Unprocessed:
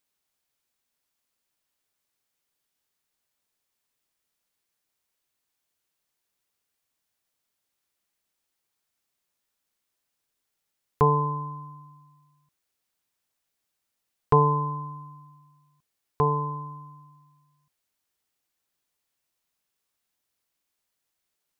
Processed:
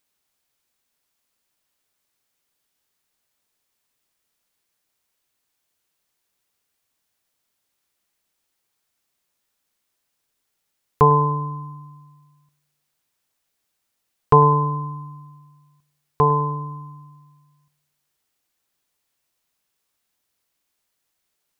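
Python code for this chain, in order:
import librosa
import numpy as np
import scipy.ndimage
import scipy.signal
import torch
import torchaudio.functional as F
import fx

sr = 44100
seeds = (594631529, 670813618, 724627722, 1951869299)

p1 = x + fx.echo_bbd(x, sr, ms=102, stages=1024, feedback_pct=53, wet_db=-19.5, dry=0)
p2 = fx.dynamic_eq(p1, sr, hz=2000.0, q=1.1, threshold_db=-42.0, ratio=4.0, max_db=7)
y = p2 * 10.0 ** (5.0 / 20.0)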